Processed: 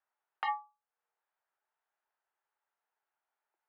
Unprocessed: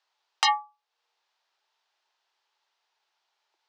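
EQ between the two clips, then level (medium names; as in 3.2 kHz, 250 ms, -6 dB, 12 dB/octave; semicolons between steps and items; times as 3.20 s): four-pole ladder low-pass 1.6 kHz, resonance 40%; bass shelf 430 Hz -11.5 dB; peaking EQ 1.1 kHz -12.5 dB 1.2 oct; +7.0 dB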